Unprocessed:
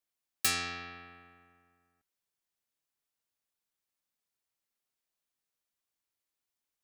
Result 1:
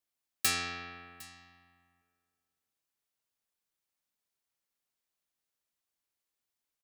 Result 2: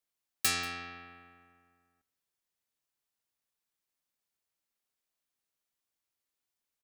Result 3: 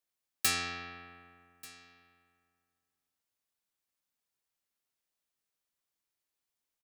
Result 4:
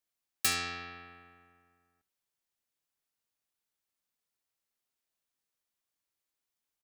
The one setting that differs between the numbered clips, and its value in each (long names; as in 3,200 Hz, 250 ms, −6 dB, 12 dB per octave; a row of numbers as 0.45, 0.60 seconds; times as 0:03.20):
single-tap delay, delay time: 757, 187, 1,187, 71 milliseconds